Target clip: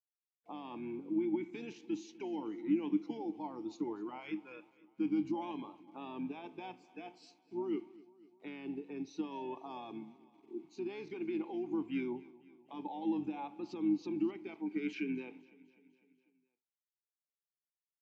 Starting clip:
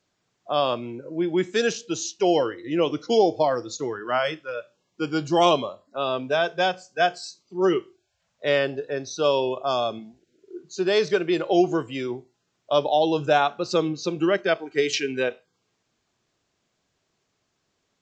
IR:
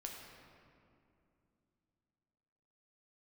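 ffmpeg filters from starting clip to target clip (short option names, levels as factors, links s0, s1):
-filter_complex "[0:a]acompressor=threshold=0.0562:ratio=10,alimiter=limit=0.0631:level=0:latency=1:release=14,acrusher=bits=9:mix=0:aa=0.000001,asplit=3[s0][s1][s2];[s0]bandpass=f=300:t=q:w=8,volume=1[s3];[s1]bandpass=f=870:t=q:w=8,volume=0.501[s4];[s2]bandpass=f=2240:t=q:w=8,volume=0.355[s5];[s3][s4][s5]amix=inputs=3:normalize=0,asplit=2[s6][s7];[s7]asetrate=29433,aresample=44100,atempo=1.49831,volume=0.2[s8];[s6][s8]amix=inputs=2:normalize=0,aecho=1:1:251|502|753|1004|1255:0.0891|0.0526|0.031|0.0183|0.0108,volume=1.68"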